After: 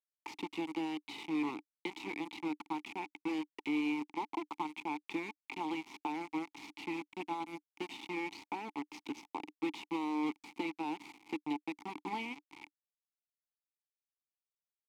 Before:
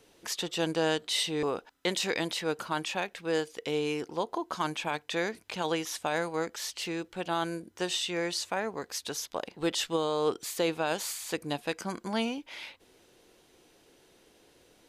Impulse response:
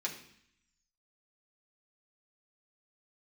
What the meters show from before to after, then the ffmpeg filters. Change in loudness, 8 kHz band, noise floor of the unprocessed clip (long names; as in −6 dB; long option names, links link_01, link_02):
−8.0 dB, −23.0 dB, −63 dBFS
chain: -filter_complex "[0:a]acrossover=split=170|860|5800[link_01][link_02][link_03][link_04];[link_01]acompressor=threshold=-57dB:ratio=4[link_05];[link_02]acompressor=threshold=-41dB:ratio=4[link_06];[link_03]acompressor=threshold=-40dB:ratio=4[link_07];[link_04]acompressor=threshold=-48dB:ratio=4[link_08];[link_05][link_06][link_07][link_08]amix=inputs=4:normalize=0,acrusher=bits=5:mix=0:aa=0.000001,asplit=3[link_09][link_10][link_11];[link_09]bandpass=frequency=300:width_type=q:width=8,volume=0dB[link_12];[link_10]bandpass=frequency=870:width_type=q:width=8,volume=-6dB[link_13];[link_11]bandpass=frequency=2240:width_type=q:width=8,volume=-9dB[link_14];[link_12][link_13][link_14]amix=inputs=3:normalize=0,volume=12.5dB"